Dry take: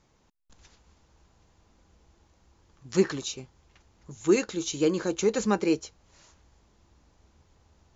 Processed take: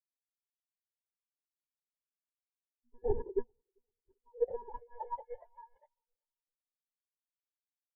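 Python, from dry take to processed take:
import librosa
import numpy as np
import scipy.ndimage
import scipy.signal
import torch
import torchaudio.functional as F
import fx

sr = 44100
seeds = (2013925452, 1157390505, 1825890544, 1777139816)

p1 = fx.rattle_buzz(x, sr, strikes_db=-38.0, level_db=-26.0)
p2 = fx.env_lowpass(p1, sr, base_hz=470.0, full_db=-20.5)
p3 = fx.low_shelf(p2, sr, hz=340.0, db=-7.5)
p4 = fx.over_compress(p3, sr, threshold_db=-39.0, ratio=-1.0)
p5 = fx.sample_hold(p4, sr, seeds[0], rate_hz=1300.0, jitter_pct=0)
p6 = fx.filter_sweep_highpass(p5, sr, from_hz=330.0, to_hz=1700.0, start_s=3.63, end_s=7.21, q=0.95)
p7 = fx.lpc_monotone(p6, sr, seeds[1], pitch_hz=240.0, order=16)
p8 = p7 + fx.echo_filtered(p7, sr, ms=393, feedback_pct=67, hz=2000.0, wet_db=-11.0, dry=0)
p9 = fx.spectral_expand(p8, sr, expansion=4.0)
y = p9 * librosa.db_to_amplitude(6.5)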